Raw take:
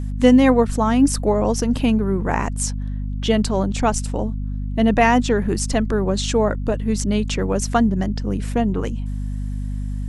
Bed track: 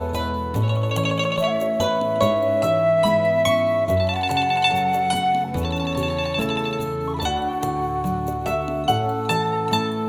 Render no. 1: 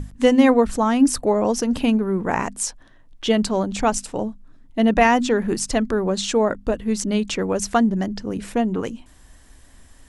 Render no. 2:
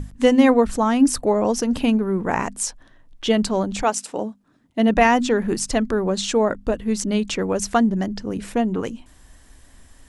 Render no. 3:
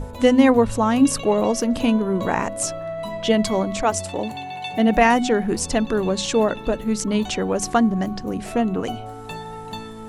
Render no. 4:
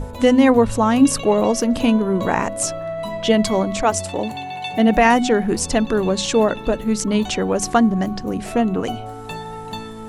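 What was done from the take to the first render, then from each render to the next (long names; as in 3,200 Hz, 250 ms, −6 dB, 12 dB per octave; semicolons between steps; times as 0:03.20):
mains-hum notches 50/100/150/200/250 Hz
0:03.82–0:04.86: high-pass filter 350 Hz → 100 Hz
mix in bed track −12 dB
level +2.5 dB; brickwall limiter −3 dBFS, peak gain reduction 3 dB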